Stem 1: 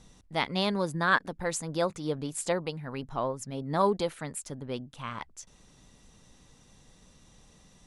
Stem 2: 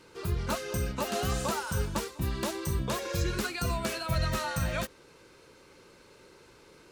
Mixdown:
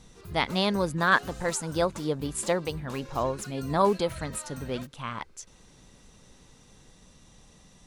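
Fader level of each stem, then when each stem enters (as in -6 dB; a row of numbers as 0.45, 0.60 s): +2.5, -12.0 dB; 0.00, 0.00 s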